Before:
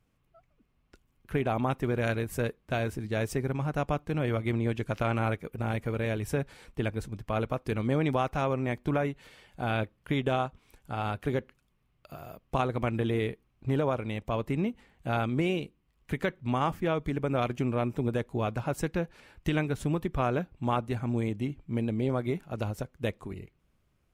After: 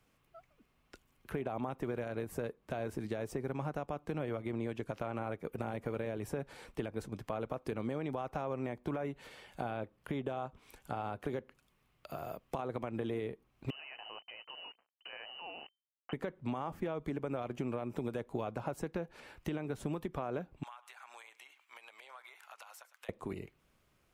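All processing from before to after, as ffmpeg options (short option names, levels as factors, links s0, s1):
-filter_complex "[0:a]asettb=1/sr,asplit=3[s0][s1][s2];[s0]atrim=end=13.704[s3];[s1]atrim=start=13.7:end=16.13,asetpts=PTS-STARTPTS,afade=t=in:d=0.004:c=qsin,afade=t=out:st=2.426:d=0.004:c=qsin,acompressor=threshold=0.02:ratio=5:attack=3.2:release=140:knee=1:detection=peak,acrusher=bits=7:mix=0:aa=0.5,lowpass=f=2600:t=q:w=0.5098,lowpass=f=2600:t=q:w=0.6013,lowpass=f=2600:t=q:w=0.9,lowpass=f=2600:t=q:w=2.563,afreqshift=-3100[s4];[s2]atrim=start=16.126[s5];[s3][s4]acrossfade=d=0.004:c1=hsin:c2=qsin[s6];[s6][s5]acrossfade=d=0.004:c1=qsin:c2=hsin,asettb=1/sr,asplit=3[s7][s8][s9];[s7]atrim=end=20.634[s10];[s8]atrim=start=20.63:end=23.09,asetpts=PTS-STARTPTS,afade=t=in:d=0.004:c=qsin,afade=t=out:st=2.456:d=0.004:c=qsin,highpass=f=970:w=0.5412,highpass=f=970:w=1.3066,acompressor=threshold=0.00282:ratio=8:attack=3.2:release=140:knee=1:detection=peak,aecho=1:1:106:0.126,atrim=end_sample=108486[s11];[s9]atrim=start=23.086[s12];[s10][s11]acrossfade=d=0.004:c1=hsin:c2=qsin[s13];[s13][s12]acrossfade=d=0.004:c1=qsin:c2=hsin,lowshelf=f=250:g=-10.5,alimiter=level_in=1.33:limit=0.0631:level=0:latency=1:release=160,volume=0.75,acrossover=split=120|1100[s14][s15][s16];[s14]acompressor=threshold=0.00126:ratio=4[s17];[s15]acompressor=threshold=0.01:ratio=4[s18];[s16]acompressor=threshold=0.00112:ratio=4[s19];[s17][s18][s19]amix=inputs=3:normalize=0,volume=1.88"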